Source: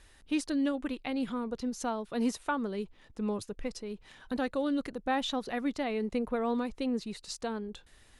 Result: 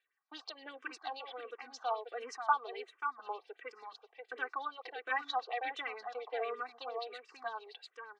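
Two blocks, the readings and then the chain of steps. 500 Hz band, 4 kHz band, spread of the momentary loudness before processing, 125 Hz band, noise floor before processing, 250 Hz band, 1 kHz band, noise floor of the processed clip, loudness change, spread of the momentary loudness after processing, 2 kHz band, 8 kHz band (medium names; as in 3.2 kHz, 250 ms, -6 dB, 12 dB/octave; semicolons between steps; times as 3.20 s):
-8.0 dB, -5.0 dB, 9 LU, under -40 dB, -60 dBFS, -29.0 dB, +1.0 dB, -77 dBFS, -6.0 dB, 14 LU, +1.0 dB, under -10 dB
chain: added noise pink -66 dBFS; gate -47 dBFS, range -23 dB; high-pass 550 Hz 24 dB/octave; comb 2.6 ms, depth 89%; on a send: delay 536 ms -6.5 dB; on the sum: LFO low-pass sine 8.7 Hz 990–5200 Hz; reverse; upward compressor, threshold -47 dBFS; reverse; treble shelf 6.4 kHz -9.5 dB; barber-pole phaser -1.4 Hz; trim -3 dB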